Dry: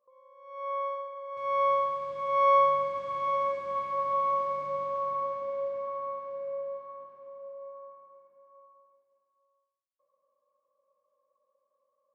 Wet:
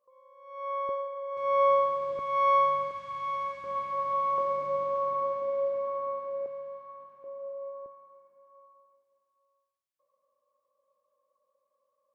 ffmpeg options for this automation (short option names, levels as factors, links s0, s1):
-af "asetnsamples=n=441:p=0,asendcmd='0.89 equalizer g 6.5;2.19 equalizer g -5;2.91 equalizer g -15;3.64 equalizer g -3;4.38 equalizer g 5;6.46 equalizer g -6;7.24 equalizer g 6;7.86 equalizer g -1',equalizer=f=420:t=o:w=1.4:g=-0.5"